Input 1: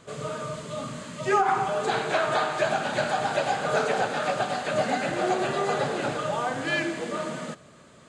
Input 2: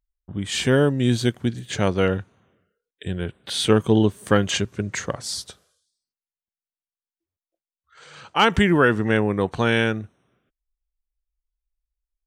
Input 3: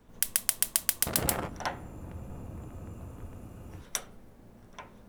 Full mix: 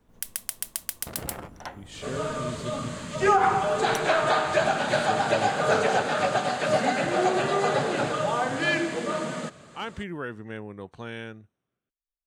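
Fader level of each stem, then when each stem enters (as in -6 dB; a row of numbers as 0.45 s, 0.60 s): +2.0 dB, -17.5 dB, -5.0 dB; 1.95 s, 1.40 s, 0.00 s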